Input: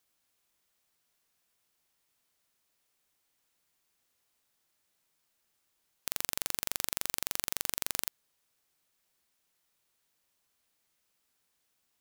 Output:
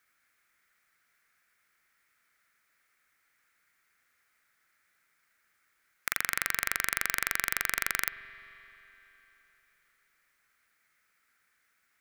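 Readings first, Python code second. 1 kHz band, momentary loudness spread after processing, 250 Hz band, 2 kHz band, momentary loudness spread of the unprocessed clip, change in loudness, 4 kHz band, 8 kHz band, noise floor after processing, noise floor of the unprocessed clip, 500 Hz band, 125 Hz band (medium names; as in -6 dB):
+9.0 dB, 8 LU, -0.5 dB, +14.0 dB, 5 LU, +3.5 dB, 0.0 dB, 0.0 dB, -74 dBFS, -78 dBFS, 0.0 dB, +0.5 dB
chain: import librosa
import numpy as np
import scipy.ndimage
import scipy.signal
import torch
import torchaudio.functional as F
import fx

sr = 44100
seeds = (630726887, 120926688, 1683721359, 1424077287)

y = fx.band_shelf(x, sr, hz=1700.0, db=15.0, octaves=1.1)
y = fx.rev_spring(y, sr, rt60_s=3.7, pass_ms=(43, 50), chirp_ms=55, drr_db=13.0)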